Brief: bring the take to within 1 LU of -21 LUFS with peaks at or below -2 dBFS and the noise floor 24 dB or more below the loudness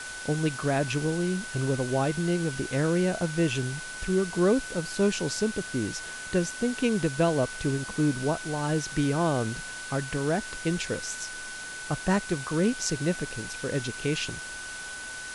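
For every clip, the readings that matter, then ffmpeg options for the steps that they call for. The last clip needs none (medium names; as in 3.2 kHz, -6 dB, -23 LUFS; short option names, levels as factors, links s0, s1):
steady tone 1.5 kHz; tone level -38 dBFS; noise floor -39 dBFS; noise floor target -53 dBFS; loudness -28.5 LUFS; peak level -11.0 dBFS; loudness target -21.0 LUFS
-> -af "bandreject=f=1500:w=30"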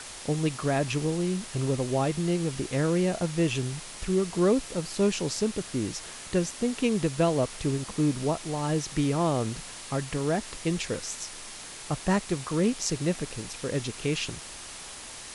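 steady tone not found; noise floor -42 dBFS; noise floor target -53 dBFS
-> -af "afftdn=nr=11:nf=-42"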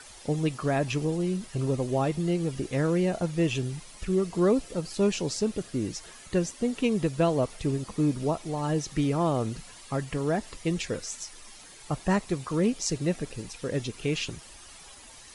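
noise floor -49 dBFS; noise floor target -53 dBFS
-> -af "afftdn=nr=6:nf=-49"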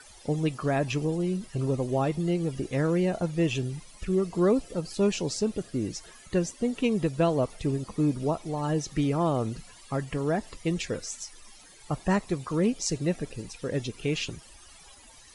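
noise floor -52 dBFS; noise floor target -53 dBFS
-> -af "afftdn=nr=6:nf=-52"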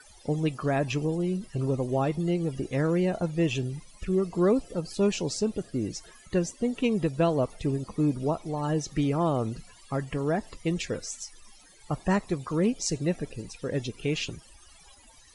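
noise floor -55 dBFS; loudness -29.0 LUFS; peak level -11.5 dBFS; loudness target -21.0 LUFS
-> -af "volume=2.51"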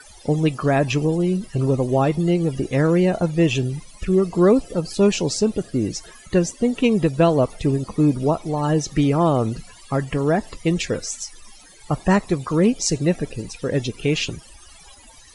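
loudness -21.0 LUFS; peak level -3.5 dBFS; noise floor -47 dBFS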